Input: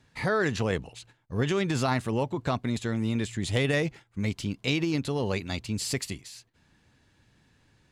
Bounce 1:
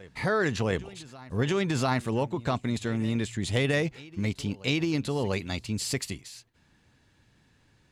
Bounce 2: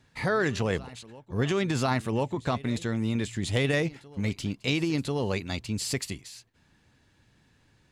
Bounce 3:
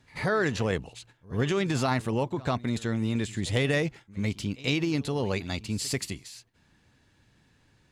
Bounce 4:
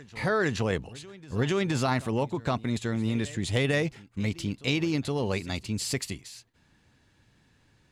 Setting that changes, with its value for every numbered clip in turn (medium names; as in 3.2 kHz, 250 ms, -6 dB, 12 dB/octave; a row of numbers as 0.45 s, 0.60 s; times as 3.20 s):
reverse echo, time: 695 ms, 1041 ms, 89 ms, 469 ms